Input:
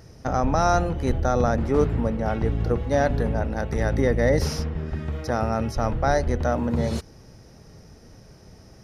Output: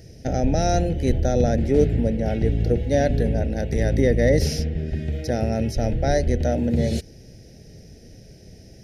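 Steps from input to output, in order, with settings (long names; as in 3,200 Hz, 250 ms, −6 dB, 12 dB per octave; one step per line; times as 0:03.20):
Butterworth band-reject 1,100 Hz, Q 0.91
level +3 dB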